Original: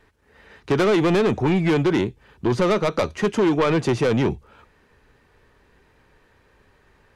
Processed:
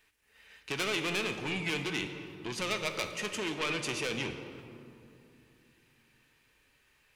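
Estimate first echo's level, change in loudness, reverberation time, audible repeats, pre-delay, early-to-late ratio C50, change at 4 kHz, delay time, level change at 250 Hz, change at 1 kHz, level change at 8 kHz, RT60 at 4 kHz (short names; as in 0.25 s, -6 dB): none, -13.0 dB, 2.8 s, none, 4 ms, 7.5 dB, -2.0 dB, none, -18.0 dB, -13.5 dB, -0.5 dB, 1.4 s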